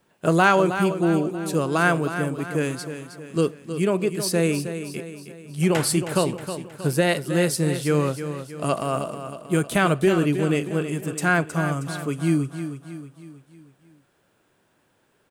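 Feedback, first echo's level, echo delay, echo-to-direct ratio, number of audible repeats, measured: 49%, -10.0 dB, 0.316 s, -9.0 dB, 5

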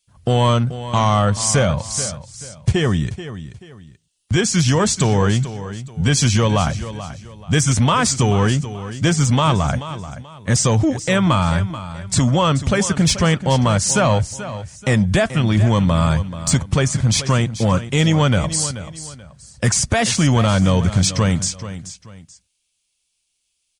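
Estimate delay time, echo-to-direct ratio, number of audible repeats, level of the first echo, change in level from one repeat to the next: 0.433 s, -12.5 dB, 2, -13.0 dB, -10.0 dB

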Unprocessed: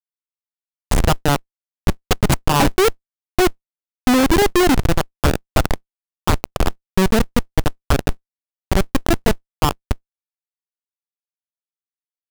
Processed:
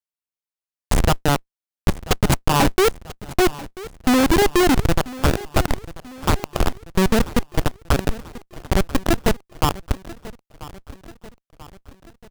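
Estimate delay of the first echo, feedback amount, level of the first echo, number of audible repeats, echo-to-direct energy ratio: 0.988 s, 54%, -18.0 dB, 4, -16.5 dB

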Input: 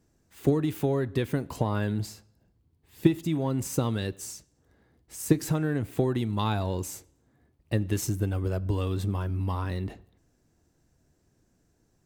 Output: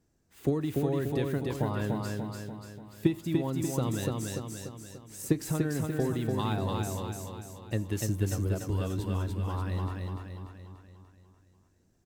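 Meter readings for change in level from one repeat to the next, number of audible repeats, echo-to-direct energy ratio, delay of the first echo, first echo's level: -5.5 dB, 6, -1.5 dB, 0.292 s, -3.0 dB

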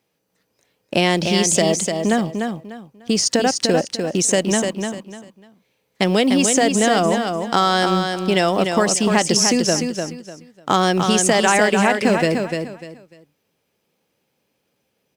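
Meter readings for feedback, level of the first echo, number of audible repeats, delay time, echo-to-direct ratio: 26%, -5.5 dB, 3, 0.298 s, -5.0 dB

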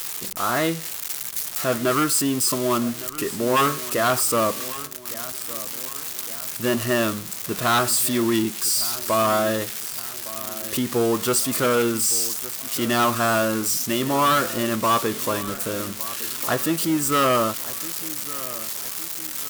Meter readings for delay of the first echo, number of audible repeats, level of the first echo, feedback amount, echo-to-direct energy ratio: 1.161 s, 3, -17.0 dB, 49%, -16.0 dB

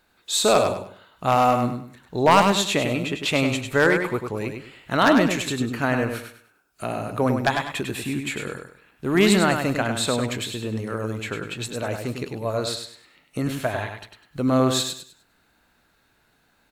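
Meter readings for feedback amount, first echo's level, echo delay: 29%, -6.0 dB, 0.1 s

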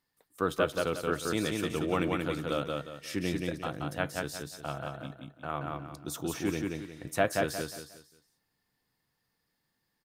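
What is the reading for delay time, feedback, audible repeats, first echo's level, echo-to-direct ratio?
0.179 s, 33%, 4, -3.0 dB, -2.5 dB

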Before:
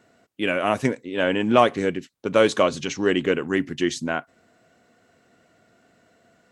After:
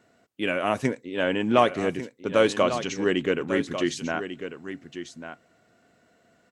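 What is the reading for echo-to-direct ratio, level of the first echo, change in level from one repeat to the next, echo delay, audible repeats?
-10.5 dB, -10.5 dB, no steady repeat, 1.145 s, 1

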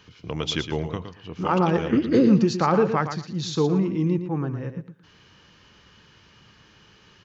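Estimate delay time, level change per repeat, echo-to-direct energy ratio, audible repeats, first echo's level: 0.115 s, -14.5 dB, -9.0 dB, 2, -9.0 dB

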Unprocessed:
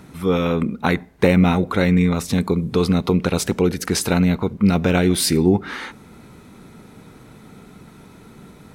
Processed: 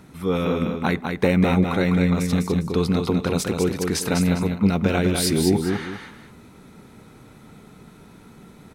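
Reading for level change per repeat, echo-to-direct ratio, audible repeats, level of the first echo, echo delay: -10.0 dB, -4.5 dB, 2, -5.0 dB, 0.202 s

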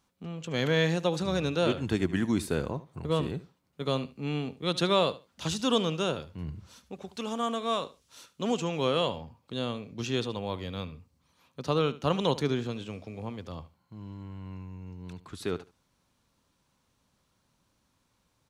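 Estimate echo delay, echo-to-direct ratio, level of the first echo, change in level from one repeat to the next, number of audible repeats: 74 ms, -17.0 dB, -17.0 dB, -15.0 dB, 2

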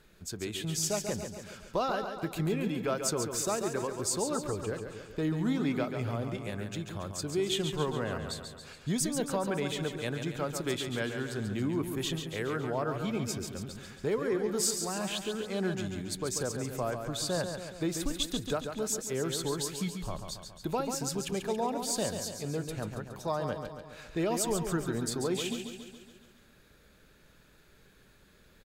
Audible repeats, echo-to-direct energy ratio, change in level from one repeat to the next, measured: 6, -5.5 dB, -5.0 dB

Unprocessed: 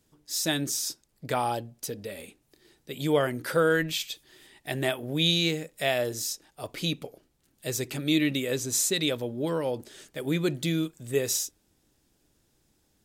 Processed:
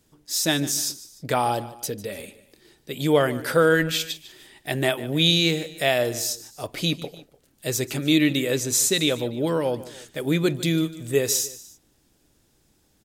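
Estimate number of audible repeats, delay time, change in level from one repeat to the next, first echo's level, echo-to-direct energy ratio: 2, 0.149 s, -6.5 dB, -17.0 dB, -16.0 dB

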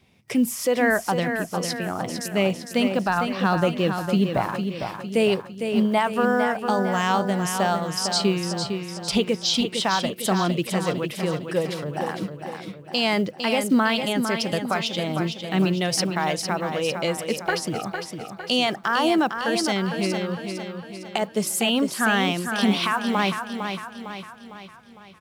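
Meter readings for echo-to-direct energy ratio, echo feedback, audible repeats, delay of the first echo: -5.5 dB, 50%, 5, 0.455 s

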